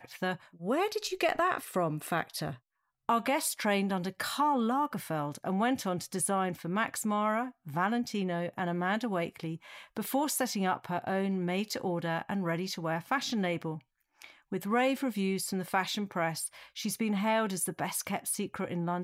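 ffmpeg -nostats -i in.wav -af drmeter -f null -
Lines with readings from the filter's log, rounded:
Channel 1: DR: 12.1
Overall DR: 12.1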